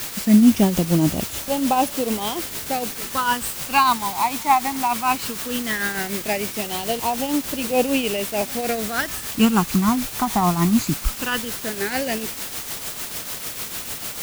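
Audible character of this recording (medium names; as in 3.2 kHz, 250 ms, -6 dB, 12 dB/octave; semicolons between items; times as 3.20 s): phasing stages 12, 0.17 Hz, lowest notch 500–1800 Hz; a quantiser's noise floor 6-bit, dither triangular; tremolo triangle 6.7 Hz, depth 60%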